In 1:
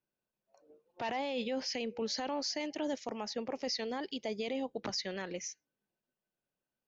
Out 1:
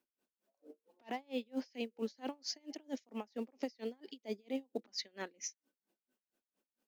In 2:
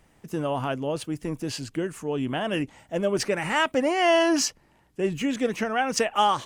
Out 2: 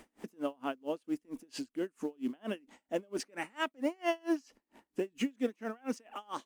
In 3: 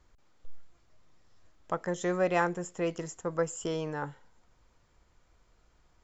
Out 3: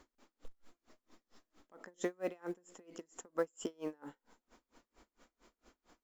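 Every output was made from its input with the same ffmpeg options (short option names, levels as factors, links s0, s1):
-filter_complex "[0:a]lowshelf=f=180:t=q:w=3:g=-10.5,asplit=2[s0][s1];[s1]acrusher=bits=5:mode=log:mix=0:aa=0.000001,volume=0.447[s2];[s0][s2]amix=inputs=2:normalize=0,acompressor=threshold=0.00631:ratio=2,aeval=exprs='val(0)*pow(10,-34*(0.5-0.5*cos(2*PI*4.4*n/s))/20)':c=same,volume=1.58"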